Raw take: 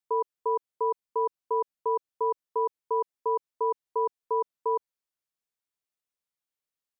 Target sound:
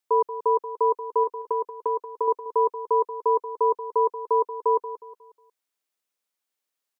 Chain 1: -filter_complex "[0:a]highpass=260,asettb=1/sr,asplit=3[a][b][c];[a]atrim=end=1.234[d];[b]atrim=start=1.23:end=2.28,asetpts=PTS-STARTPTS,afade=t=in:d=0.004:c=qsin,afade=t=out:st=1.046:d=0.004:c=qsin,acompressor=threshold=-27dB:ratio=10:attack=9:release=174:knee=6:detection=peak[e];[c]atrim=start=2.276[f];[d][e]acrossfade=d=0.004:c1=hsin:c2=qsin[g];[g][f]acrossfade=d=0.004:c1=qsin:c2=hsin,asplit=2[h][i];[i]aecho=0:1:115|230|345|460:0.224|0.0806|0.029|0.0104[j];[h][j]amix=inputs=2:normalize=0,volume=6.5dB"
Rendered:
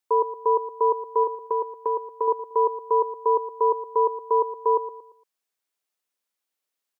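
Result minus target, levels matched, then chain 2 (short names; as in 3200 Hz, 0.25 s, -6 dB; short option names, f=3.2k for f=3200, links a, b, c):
echo 66 ms early
-filter_complex "[0:a]highpass=260,asettb=1/sr,asplit=3[a][b][c];[a]atrim=end=1.234[d];[b]atrim=start=1.23:end=2.28,asetpts=PTS-STARTPTS,afade=t=in:d=0.004:c=qsin,afade=t=out:st=1.046:d=0.004:c=qsin,acompressor=threshold=-27dB:ratio=10:attack=9:release=174:knee=6:detection=peak[e];[c]atrim=start=2.276[f];[d][e]acrossfade=d=0.004:c1=hsin:c2=qsin[g];[g][f]acrossfade=d=0.004:c1=qsin:c2=hsin,asplit=2[h][i];[i]aecho=0:1:181|362|543|724:0.224|0.0806|0.029|0.0104[j];[h][j]amix=inputs=2:normalize=0,volume=6.5dB"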